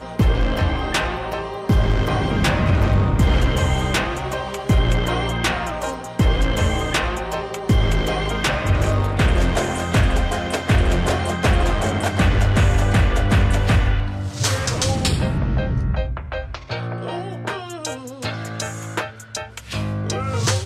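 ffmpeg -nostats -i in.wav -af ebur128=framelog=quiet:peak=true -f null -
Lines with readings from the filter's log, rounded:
Integrated loudness:
  I:         -20.8 LUFS
  Threshold: -30.9 LUFS
Loudness range:
  LRA:         8.2 LU
  Threshold: -40.7 LUFS
  LRA low:   -27.0 LUFS
  LRA high:  -18.8 LUFS
True peak:
  Peak:       -8.6 dBFS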